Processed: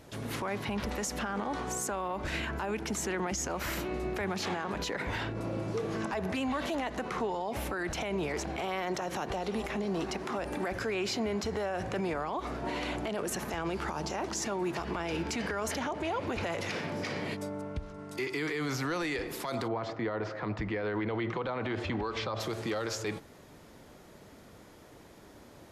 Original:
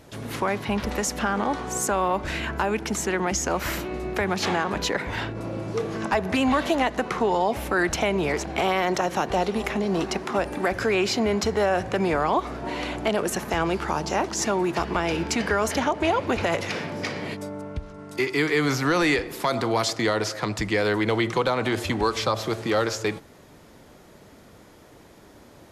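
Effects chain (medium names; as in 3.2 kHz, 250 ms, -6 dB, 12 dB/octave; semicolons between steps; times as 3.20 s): 19.67–22.39 s: low-pass 1.5 kHz -> 3.6 kHz 12 dB/octave; peak limiter -21.5 dBFS, peak gain reduction 11 dB; trim -3.5 dB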